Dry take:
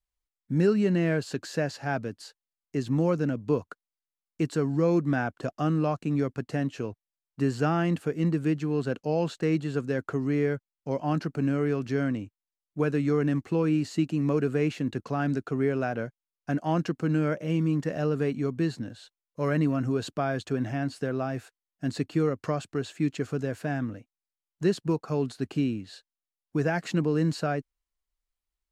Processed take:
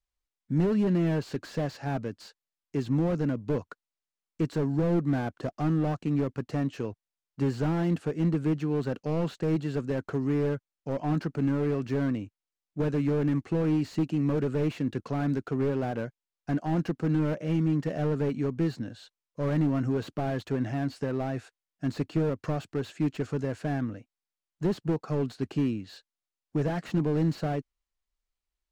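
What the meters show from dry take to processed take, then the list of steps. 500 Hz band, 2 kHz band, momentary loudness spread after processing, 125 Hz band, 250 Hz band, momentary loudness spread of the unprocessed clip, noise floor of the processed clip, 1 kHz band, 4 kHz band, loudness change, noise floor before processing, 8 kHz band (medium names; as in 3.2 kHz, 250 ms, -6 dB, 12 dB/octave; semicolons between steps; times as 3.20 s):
-2.5 dB, -5.5 dB, 8 LU, 0.0 dB, -0.5 dB, 9 LU, under -85 dBFS, -3.0 dB, -3.5 dB, -1.0 dB, under -85 dBFS, no reading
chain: low-pass 7.9 kHz 12 dB/octave; slew-rate limiter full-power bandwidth 24 Hz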